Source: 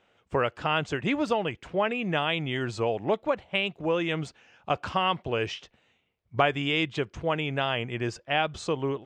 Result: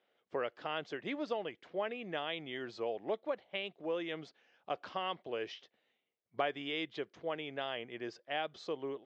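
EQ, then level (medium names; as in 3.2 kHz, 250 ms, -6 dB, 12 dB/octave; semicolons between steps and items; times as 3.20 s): cabinet simulation 320–5100 Hz, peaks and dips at 930 Hz -3 dB, 1.4 kHz -4 dB, 2.6 kHz -7 dB; peaking EQ 1 kHz -3 dB 0.85 oct; -8.0 dB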